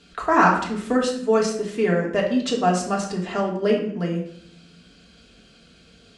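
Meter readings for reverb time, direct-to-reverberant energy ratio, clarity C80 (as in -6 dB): 0.65 s, -2.5 dB, 9.5 dB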